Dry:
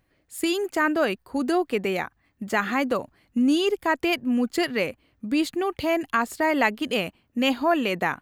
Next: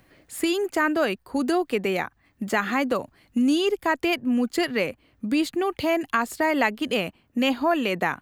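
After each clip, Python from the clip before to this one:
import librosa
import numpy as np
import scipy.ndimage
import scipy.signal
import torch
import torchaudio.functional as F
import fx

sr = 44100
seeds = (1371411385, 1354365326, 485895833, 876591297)

y = fx.band_squash(x, sr, depth_pct=40)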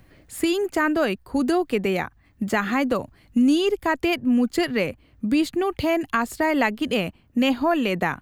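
y = fx.low_shelf(x, sr, hz=150.0, db=12.0)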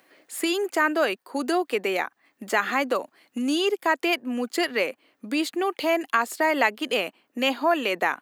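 y = scipy.signal.sosfilt(scipy.signal.bessel(4, 450.0, 'highpass', norm='mag', fs=sr, output='sos'), x)
y = y * librosa.db_to_amplitude(1.5)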